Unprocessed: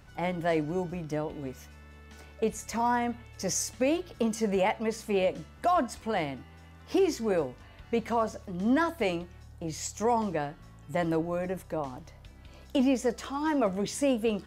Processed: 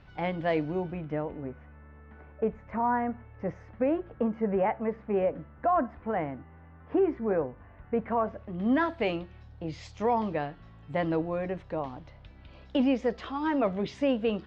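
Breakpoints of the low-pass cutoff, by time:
low-pass 24 dB/octave
0.62 s 4.2 kHz
1.51 s 1.8 kHz
7.98 s 1.8 kHz
8.93 s 4 kHz

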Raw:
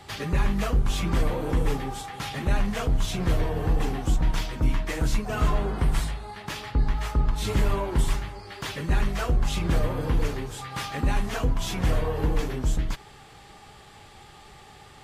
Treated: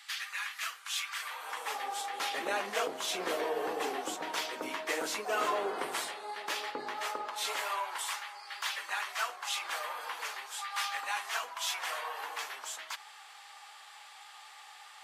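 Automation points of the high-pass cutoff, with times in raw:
high-pass 24 dB/octave
1.17 s 1.4 kHz
2.17 s 390 Hz
6.97 s 390 Hz
7.86 s 850 Hz

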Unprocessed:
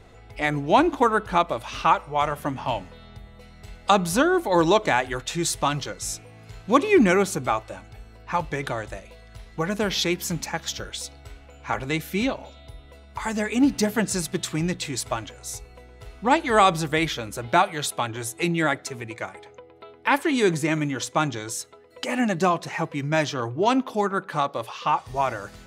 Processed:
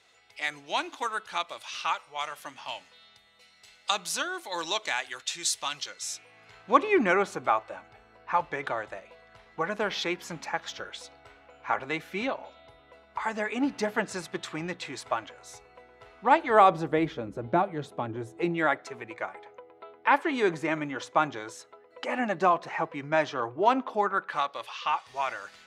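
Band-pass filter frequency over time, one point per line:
band-pass filter, Q 0.7
5.81 s 4.8 kHz
6.78 s 1.1 kHz
16.26 s 1.1 kHz
17.34 s 280 Hz
18.24 s 280 Hz
18.64 s 960 Hz
23.97 s 960 Hz
24.51 s 2.6 kHz

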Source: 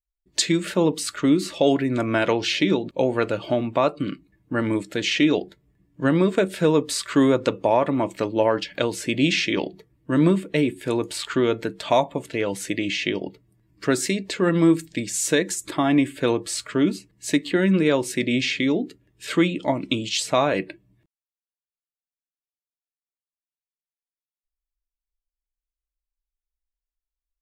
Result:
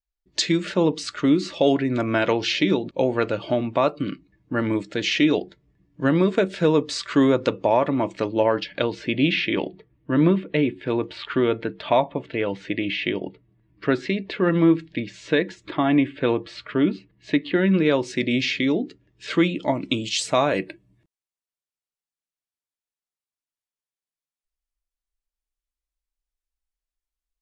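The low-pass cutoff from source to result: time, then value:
low-pass 24 dB/octave
8.17 s 6.3 kHz
9.32 s 3.6 kHz
17.46 s 3.6 kHz
18.11 s 6 kHz
19.35 s 6 kHz
20.59 s 11 kHz

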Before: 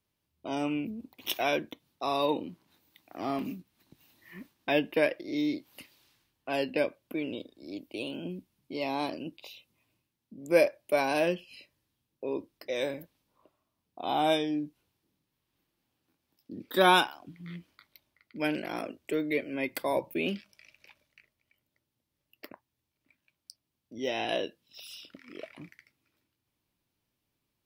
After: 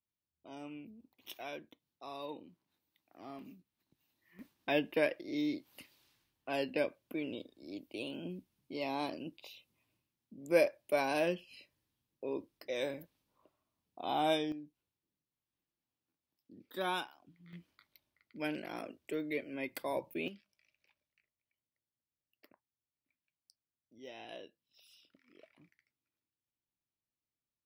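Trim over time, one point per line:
-16 dB
from 4.39 s -5 dB
from 14.52 s -14.5 dB
from 17.53 s -7.5 dB
from 20.28 s -17.5 dB

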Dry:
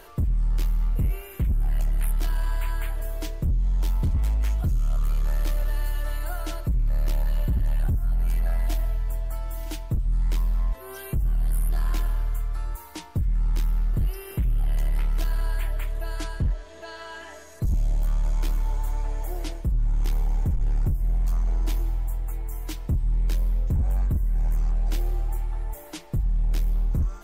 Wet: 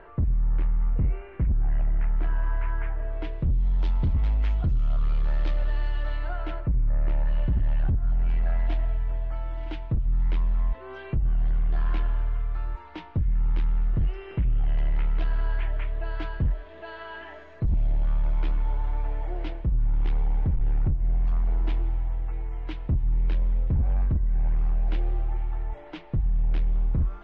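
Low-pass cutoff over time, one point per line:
low-pass 24 dB/octave
2.97 s 2.1 kHz
3.56 s 3.8 kHz
6.12 s 3.8 kHz
6.90 s 1.9 kHz
7.40 s 3.1 kHz

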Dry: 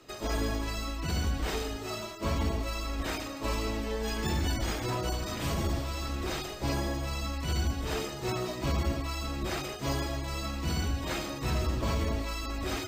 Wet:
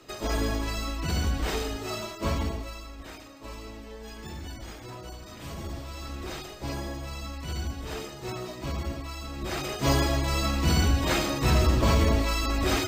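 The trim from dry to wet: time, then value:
2.28 s +3 dB
2.96 s -9.5 dB
5.23 s -9.5 dB
6.10 s -3 dB
9.31 s -3 dB
9.87 s +8 dB

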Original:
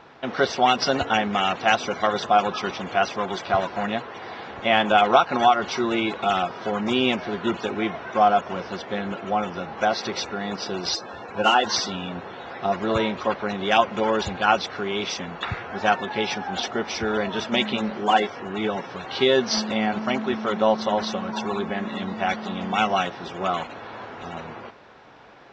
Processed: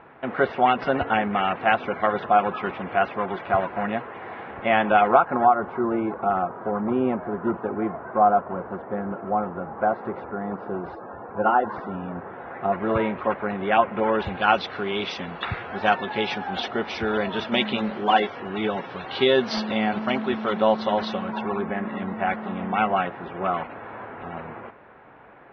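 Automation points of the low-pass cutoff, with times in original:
low-pass 24 dB/octave
4.95 s 2.4 kHz
5.49 s 1.4 kHz
11.75 s 1.4 kHz
12.89 s 2.3 kHz
14.02 s 2.3 kHz
14.56 s 4 kHz
21.10 s 4 kHz
21.56 s 2.3 kHz

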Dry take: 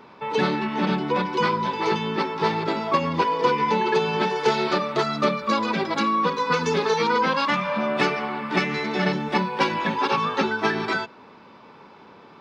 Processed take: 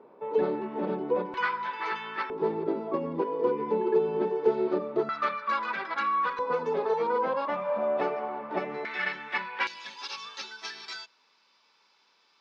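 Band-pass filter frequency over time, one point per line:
band-pass filter, Q 2
470 Hz
from 1.34 s 1.6 kHz
from 2.30 s 380 Hz
from 5.09 s 1.5 kHz
from 6.39 s 610 Hz
from 8.85 s 1.9 kHz
from 9.67 s 5.5 kHz

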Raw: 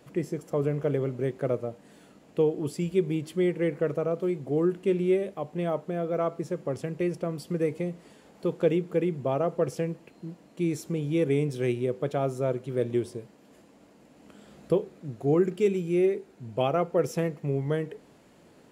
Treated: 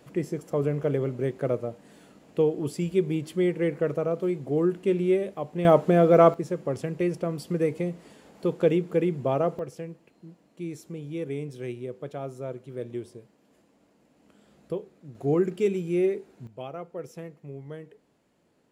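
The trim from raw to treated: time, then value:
+1 dB
from 5.65 s +11.5 dB
from 6.34 s +2 dB
from 9.59 s -7.5 dB
from 15.15 s -0.5 dB
from 16.47 s -12 dB

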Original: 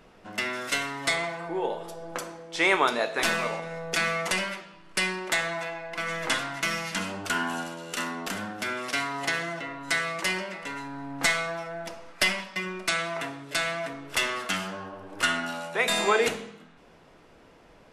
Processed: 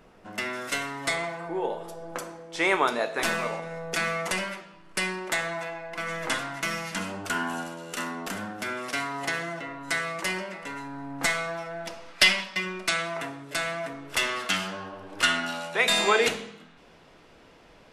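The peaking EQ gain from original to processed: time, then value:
peaking EQ 3.7 kHz 1.8 oct
11.37 s -3.5 dB
12.28 s +8.5 dB
13.28 s -3.5 dB
13.90 s -3.5 dB
14.52 s +4.5 dB

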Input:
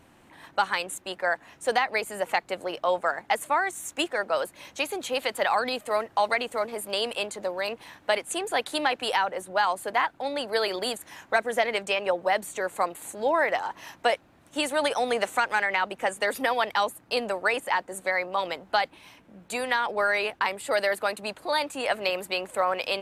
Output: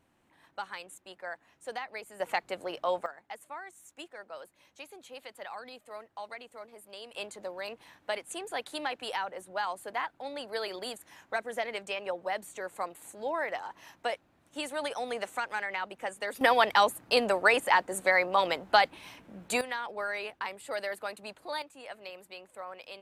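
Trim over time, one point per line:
-14 dB
from 2.20 s -5 dB
from 3.06 s -18 dB
from 7.14 s -9 dB
from 16.41 s +2 dB
from 19.61 s -10 dB
from 21.62 s -17.5 dB

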